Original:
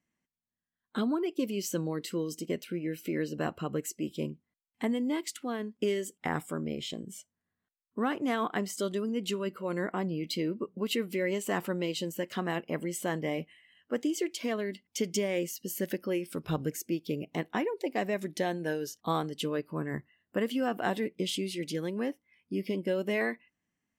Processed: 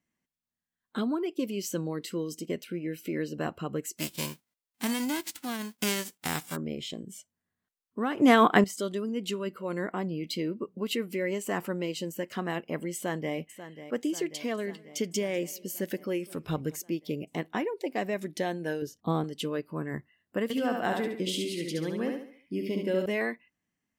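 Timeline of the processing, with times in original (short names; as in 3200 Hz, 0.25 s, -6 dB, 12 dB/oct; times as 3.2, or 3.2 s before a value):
3.96–6.55 spectral whitening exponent 0.3
8.18–8.64 gain +11 dB
10.97–12.39 bell 3600 Hz -6 dB 0.36 oct
12.95–13.36 echo throw 0.54 s, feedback 70%, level -12.5 dB
14.32–16.8 warbling echo 0.197 s, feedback 34%, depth 56 cents, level -23.5 dB
18.82–19.24 tilt shelf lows +7 dB, about 640 Hz
20.43–23.06 feedback echo 70 ms, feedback 39%, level -4 dB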